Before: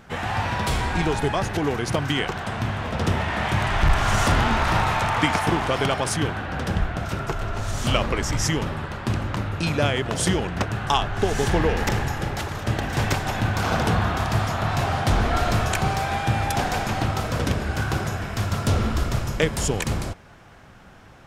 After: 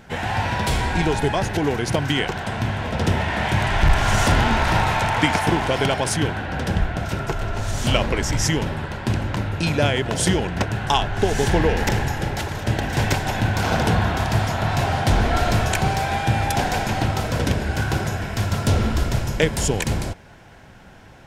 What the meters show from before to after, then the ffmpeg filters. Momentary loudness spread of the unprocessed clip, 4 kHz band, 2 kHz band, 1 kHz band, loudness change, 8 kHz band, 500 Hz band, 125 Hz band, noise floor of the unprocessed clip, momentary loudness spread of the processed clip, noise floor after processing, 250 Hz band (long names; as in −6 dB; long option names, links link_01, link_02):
6 LU, +2.5 dB, +2.0 dB, +1.5 dB, +2.0 dB, +2.5 dB, +2.5 dB, +2.5 dB, −47 dBFS, 6 LU, −45 dBFS, +2.5 dB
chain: -af "bandreject=frequency=1200:width=5.7,volume=2.5dB"